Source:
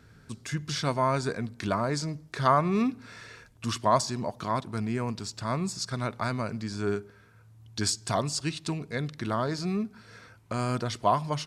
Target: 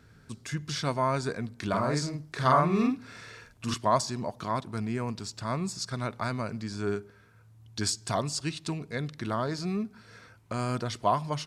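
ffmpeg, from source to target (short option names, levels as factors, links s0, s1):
-filter_complex "[0:a]asettb=1/sr,asplit=3[s0][s1][s2];[s0]atrim=end=1.694[s3];[s1]atrim=start=1.69:end=3.74,asetpts=PTS-STARTPTS,afade=t=in:d=0.004:c=qsin,afade=t=out:st=2.046:d=0.004:c=qsin,asplit=2[s4][s5];[s5]adelay=47,volume=0.75[s6];[s4][s6]amix=inputs=2:normalize=0,atrim=end_sample=90405[s7];[s2]atrim=start=3.736[s8];[s3][s7]acrossfade=d=0.004:c1=hsin:c2=qsin[s9];[s9][s8]acrossfade=d=0.004:c1=qsin:c2=hsin,volume=0.841"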